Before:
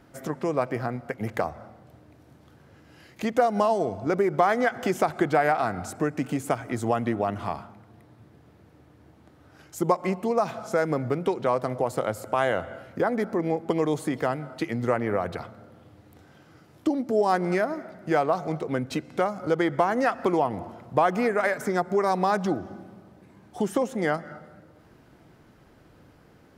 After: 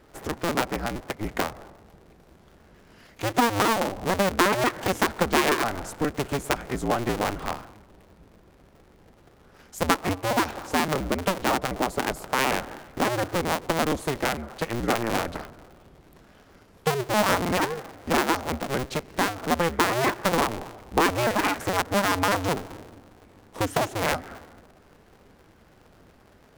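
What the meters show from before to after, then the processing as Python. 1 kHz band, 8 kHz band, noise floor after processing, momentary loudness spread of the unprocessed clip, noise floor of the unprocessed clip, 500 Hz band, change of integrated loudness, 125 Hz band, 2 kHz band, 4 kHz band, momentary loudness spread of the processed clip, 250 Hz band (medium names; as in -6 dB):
+1.0 dB, +10.5 dB, -56 dBFS, 9 LU, -56 dBFS, -2.5 dB, +0.5 dB, +1.0 dB, +4.5 dB, +12.0 dB, 9 LU, -0.5 dB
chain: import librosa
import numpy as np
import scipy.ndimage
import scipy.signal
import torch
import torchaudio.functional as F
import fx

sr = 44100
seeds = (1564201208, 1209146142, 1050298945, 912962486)

y = fx.cycle_switch(x, sr, every=2, mode='inverted')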